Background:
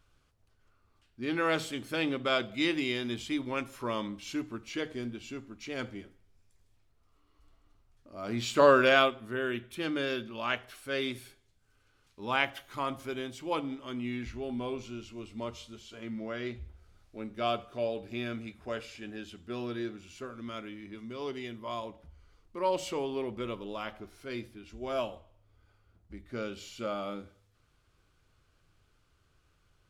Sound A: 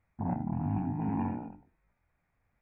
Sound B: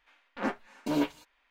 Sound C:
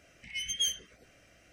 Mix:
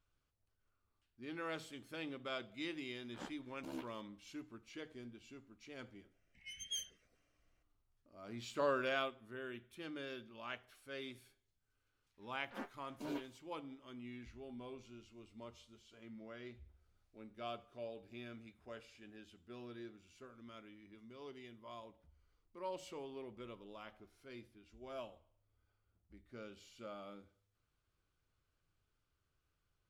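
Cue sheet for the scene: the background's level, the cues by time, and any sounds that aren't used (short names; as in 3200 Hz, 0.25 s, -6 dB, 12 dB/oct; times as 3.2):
background -14.5 dB
2.77 add B -15.5 dB + ring modulator 35 Hz
6.11 add C -14.5 dB + three-band expander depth 40%
12.14 add B -15.5 dB
not used: A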